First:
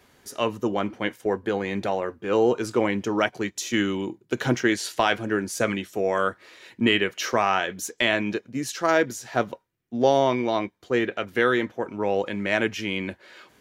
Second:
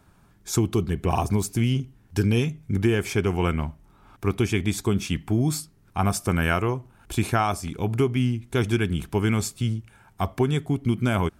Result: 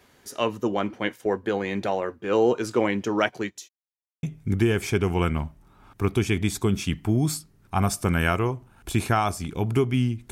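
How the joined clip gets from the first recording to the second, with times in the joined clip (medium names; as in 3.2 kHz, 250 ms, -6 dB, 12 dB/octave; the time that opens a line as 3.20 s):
first
3.29–3.69 s: fade out equal-power
3.69–4.23 s: mute
4.23 s: go over to second from 2.46 s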